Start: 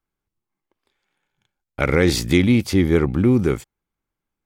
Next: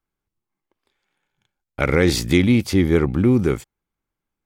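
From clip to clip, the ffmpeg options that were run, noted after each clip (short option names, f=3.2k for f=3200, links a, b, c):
-af anull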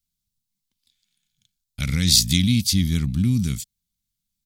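-af "firequalizer=gain_entry='entry(210,0);entry(370,-27);entry(3800,10)':delay=0.05:min_phase=1"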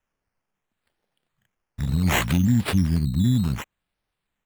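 -af "afftfilt=real='re*(1-between(b*sr/4096,460,6400))':imag='im*(1-between(b*sr/4096,460,6400))':win_size=4096:overlap=0.75,acrusher=samples=9:mix=1:aa=0.000001:lfo=1:lforange=5.4:lforate=0.67"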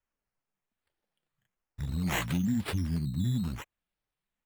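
-af "flanger=delay=1.9:depth=5.7:regen=-42:speed=1.1:shape=triangular,volume=-5dB"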